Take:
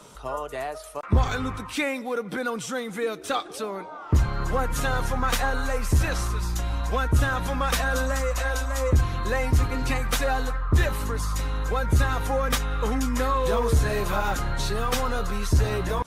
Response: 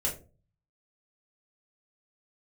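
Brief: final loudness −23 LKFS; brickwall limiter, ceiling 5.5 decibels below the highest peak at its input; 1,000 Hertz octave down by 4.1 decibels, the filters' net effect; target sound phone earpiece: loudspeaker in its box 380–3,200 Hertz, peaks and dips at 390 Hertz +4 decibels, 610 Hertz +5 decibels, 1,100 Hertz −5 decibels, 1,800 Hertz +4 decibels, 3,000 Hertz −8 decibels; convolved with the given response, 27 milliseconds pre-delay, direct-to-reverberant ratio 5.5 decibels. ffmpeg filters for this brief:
-filter_complex "[0:a]equalizer=frequency=1000:width_type=o:gain=-4,alimiter=limit=-17dB:level=0:latency=1,asplit=2[link_01][link_02];[1:a]atrim=start_sample=2205,adelay=27[link_03];[link_02][link_03]afir=irnorm=-1:irlink=0,volume=-11dB[link_04];[link_01][link_04]amix=inputs=2:normalize=0,highpass=380,equalizer=frequency=390:width_type=q:width=4:gain=4,equalizer=frequency=610:width_type=q:width=4:gain=5,equalizer=frequency=1100:width_type=q:width=4:gain=-5,equalizer=frequency=1800:width_type=q:width=4:gain=4,equalizer=frequency=3000:width_type=q:width=4:gain=-8,lowpass=frequency=3200:width=0.5412,lowpass=frequency=3200:width=1.3066,volume=7dB"

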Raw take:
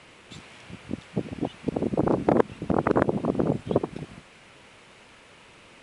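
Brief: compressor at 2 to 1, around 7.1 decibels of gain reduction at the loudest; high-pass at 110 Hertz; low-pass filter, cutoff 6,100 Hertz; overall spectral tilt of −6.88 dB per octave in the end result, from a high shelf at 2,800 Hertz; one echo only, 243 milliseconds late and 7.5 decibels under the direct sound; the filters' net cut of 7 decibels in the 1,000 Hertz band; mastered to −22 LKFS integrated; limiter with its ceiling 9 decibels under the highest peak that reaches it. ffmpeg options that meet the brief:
ffmpeg -i in.wav -af "highpass=110,lowpass=6100,equalizer=frequency=1000:width_type=o:gain=-9,highshelf=frequency=2800:gain=-7,acompressor=threshold=-31dB:ratio=2,alimiter=limit=-22.5dB:level=0:latency=1,aecho=1:1:243:0.422,volume=14.5dB" out.wav

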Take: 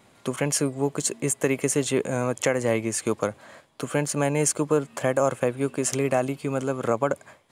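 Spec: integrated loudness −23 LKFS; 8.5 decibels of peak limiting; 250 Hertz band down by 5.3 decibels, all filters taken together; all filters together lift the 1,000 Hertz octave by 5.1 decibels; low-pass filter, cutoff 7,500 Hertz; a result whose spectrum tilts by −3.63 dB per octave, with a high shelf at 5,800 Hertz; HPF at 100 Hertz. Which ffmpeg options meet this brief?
ffmpeg -i in.wav -af "highpass=100,lowpass=7500,equalizer=frequency=250:width_type=o:gain=-7,equalizer=frequency=1000:width_type=o:gain=7,highshelf=frequency=5800:gain=5,volume=5dB,alimiter=limit=-10dB:level=0:latency=1" out.wav

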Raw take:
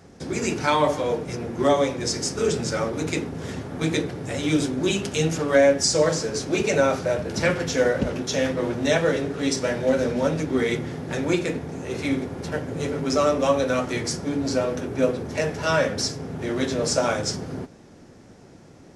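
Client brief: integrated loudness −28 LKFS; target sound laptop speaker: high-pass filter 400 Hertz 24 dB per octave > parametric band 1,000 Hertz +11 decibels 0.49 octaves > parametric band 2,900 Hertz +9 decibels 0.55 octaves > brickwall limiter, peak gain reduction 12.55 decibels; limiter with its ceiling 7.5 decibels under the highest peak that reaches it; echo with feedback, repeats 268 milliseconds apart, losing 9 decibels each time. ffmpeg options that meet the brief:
ffmpeg -i in.wav -af "alimiter=limit=-14dB:level=0:latency=1,highpass=frequency=400:width=0.5412,highpass=frequency=400:width=1.3066,equalizer=frequency=1000:width_type=o:width=0.49:gain=11,equalizer=frequency=2900:width_type=o:width=0.55:gain=9,aecho=1:1:268|536|804|1072:0.355|0.124|0.0435|0.0152,volume=0.5dB,alimiter=limit=-18.5dB:level=0:latency=1" out.wav

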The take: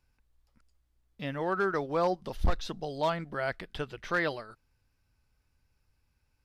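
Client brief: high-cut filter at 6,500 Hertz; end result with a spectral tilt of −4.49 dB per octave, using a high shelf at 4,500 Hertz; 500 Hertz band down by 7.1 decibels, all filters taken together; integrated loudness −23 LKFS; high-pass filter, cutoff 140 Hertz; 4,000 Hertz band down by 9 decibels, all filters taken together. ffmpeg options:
ffmpeg -i in.wav -af "highpass=140,lowpass=6500,equalizer=frequency=500:width_type=o:gain=-9,equalizer=frequency=4000:width_type=o:gain=-7,highshelf=frequency=4500:gain=-8,volume=14dB" out.wav

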